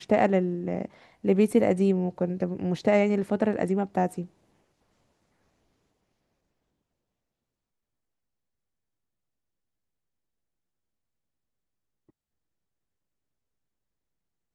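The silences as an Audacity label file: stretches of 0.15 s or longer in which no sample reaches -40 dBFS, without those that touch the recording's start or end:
0.860000	1.240000	silence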